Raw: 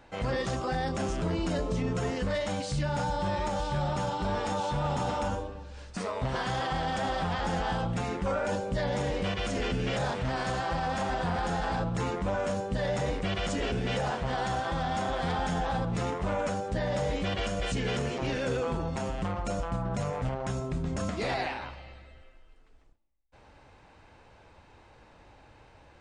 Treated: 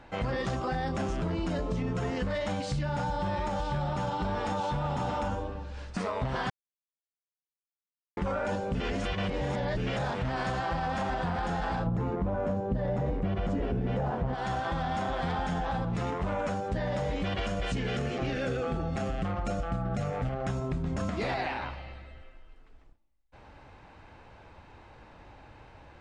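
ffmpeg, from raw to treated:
-filter_complex "[0:a]asplit=3[s0][s1][s2];[s0]afade=t=out:st=11.86:d=0.02[s3];[s1]tiltshelf=f=1500:g=9.5,afade=t=in:st=11.86:d=0.02,afade=t=out:st=14.33:d=0.02[s4];[s2]afade=t=in:st=14.33:d=0.02[s5];[s3][s4][s5]amix=inputs=3:normalize=0,asettb=1/sr,asplit=3[s6][s7][s8];[s6]atrim=end=17.884[s9];[s7]atrim=start=17.88:end=20.49,asetpts=PTS-STARTPTS,afade=t=in:d=0.004:c=qsin,afade=t=out:st=2.606:d=0.004:c=qsin,asuperstop=centerf=970:order=8:qfactor=5.3[s10];[s8]atrim=start=20.486[s11];[s9][s10]acrossfade=d=0.004:c1=hsin:c2=qsin[s12];[s12][s11]acrossfade=d=0.004:c1=qsin:c2=hsin,asplit=5[s13][s14][s15][s16][s17];[s13]atrim=end=6.5,asetpts=PTS-STARTPTS,afade=t=out:st=6.496:d=0.004:c=hsin[s18];[s14]atrim=start=6.5:end=8.17,asetpts=PTS-STARTPTS,volume=0[s19];[s15]atrim=start=8.17:end=8.752,asetpts=PTS-STARTPTS,afade=t=in:d=0.004:c=hsin[s20];[s16]atrim=start=8.748:end=9.772,asetpts=PTS-STARTPTS,areverse[s21];[s17]atrim=start=9.768[s22];[s18][s19][s20]concat=n=3:v=0:a=1[s23];[s23][s21]acrossfade=d=0.004:c1=hsin:c2=hsin[s24];[s24][s22]acrossfade=d=0.004:c1=hsin:c2=hsin,lowpass=f=3200:p=1,equalizer=f=480:t=o:w=0.77:g=-2.5,acompressor=threshold=0.0251:ratio=6,volume=1.68"

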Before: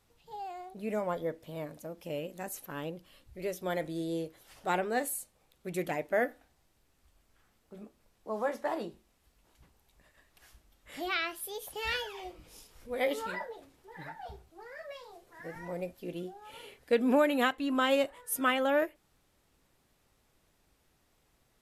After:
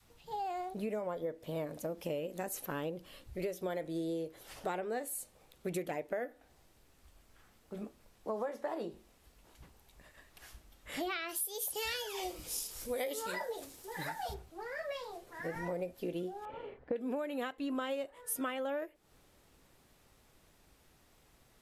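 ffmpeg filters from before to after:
-filter_complex "[0:a]asplit=3[s0][s1][s2];[s0]afade=t=out:st=11.28:d=0.02[s3];[s1]bass=f=250:g=-2,treble=f=4000:g=15,afade=t=in:st=11.28:d=0.02,afade=t=out:st=14.33:d=0.02[s4];[s2]afade=t=in:st=14.33:d=0.02[s5];[s3][s4][s5]amix=inputs=3:normalize=0,asettb=1/sr,asplit=3[s6][s7][s8];[s6]atrim=end=16.454[s9];[s7]atrim=start=16.45:end=16.96,asetpts=PTS-STARTPTS,afade=t=in:d=0.004:c=qsin,afade=t=out:st=0.506:d=0.004:c=qsin,lowpass=1200[s10];[s8]atrim=start=16.956[s11];[s9][s10]acrossfade=d=0.004:c1=hsin:c2=qsin[s12];[s12][s11]acrossfade=d=0.004:c1=qsin:c2=hsin,adynamicequalizer=threshold=0.00708:dfrequency=460:dqfactor=1.2:tfrequency=460:tqfactor=1.2:attack=5:release=100:ratio=0.375:range=2.5:mode=boostabove:tftype=bell,acompressor=threshold=0.0112:ratio=12,volume=1.78"

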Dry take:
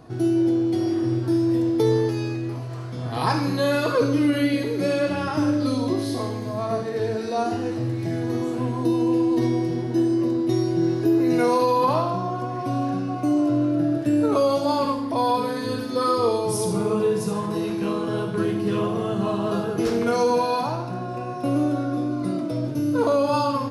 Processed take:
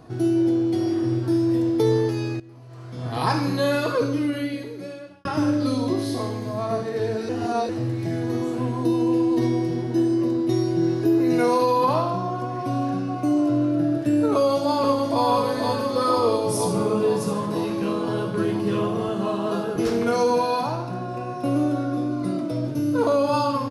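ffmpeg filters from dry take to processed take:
-filter_complex "[0:a]asplit=2[s0][s1];[s1]afade=t=in:st=14.35:d=0.01,afade=t=out:st=15.24:d=0.01,aecho=0:1:480|960|1440|1920|2400|2880|3360|3840|4320|4800|5280|5760:0.630957|0.473218|0.354914|0.266185|0.199639|0.149729|0.112297|0.0842226|0.063167|0.0473752|0.0355314|0.0266486[s2];[s0][s2]amix=inputs=2:normalize=0,asettb=1/sr,asplit=3[s3][s4][s5];[s3]atrim=end=19.094[s6];[s4]atrim=start=19.09:end=19.76,asetpts=PTS-STARTPTS,afade=t=in:d=0.004:c=qsin,afade=t=out:st=0.666:d=0.004:c=qsin,highpass=180[s7];[s5]atrim=start=19.756[s8];[s6][s7]acrossfade=d=0.004:c1=hsin:c2=qsin[s9];[s9][s8]acrossfade=d=0.004:c1=qsin:c2=hsin,asplit=5[s10][s11][s12][s13][s14];[s10]atrim=end=2.4,asetpts=PTS-STARTPTS,afade=t=out:st=2.396:d=0.004:c=hsin:silence=0.133352[s15];[s11]atrim=start=2.4:end=5.25,asetpts=PTS-STARTPTS,afade=t=in:d=0.67:c=qua:silence=0.133352,afade=t=out:st=1.25:d=1.6[s16];[s12]atrim=start=5.25:end=7.292,asetpts=PTS-STARTPTS,afade=t=in:d=0.004:c=hsin[s17];[s13]atrim=start=7.288:end=7.692,asetpts=PTS-STARTPTS,areverse[s18];[s14]atrim=start=7.688[s19];[s15][s16][s17]concat=n=3:v=0:a=1[s20];[s20][s18]acrossfade=d=0.004:c1=hsin:c2=hsin[s21];[s21][s19]acrossfade=d=0.004:c1=hsin:c2=hsin"

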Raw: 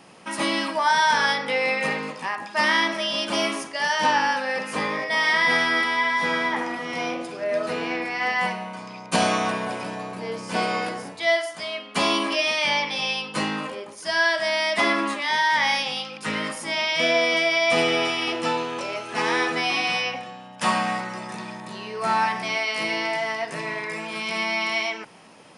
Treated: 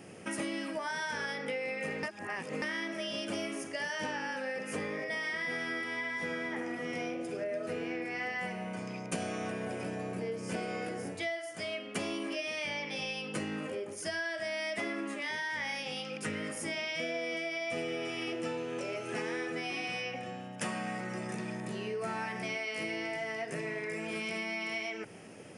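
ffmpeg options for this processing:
-filter_complex "[0:a]asplit=3[s0][s1][s2];[s0]atrim=end=2.032[s3];[s1]atrim=start=2.028:end=2.622,asetpts=PTS-STARTPTS,areverse[s4];[s2]atrim=start=2.618[s5];[s3][s4]acrossfade=d=0.004:c1=hsin:c2=hsin[s6];[s6][s5]acrossfade=d=0.004:c1=hsin:c2=hsin,equalizer=f=100:t=o:w=0.67:g=9,equalizer=f=400:t=o:w=0.67:g=5,equalizer=f=1000:t=o:w=0.67:g=-12,equalizer=f=4000:t=o:w=0.67:g=-11,acompressor=threshold=0.02:ratio=6"

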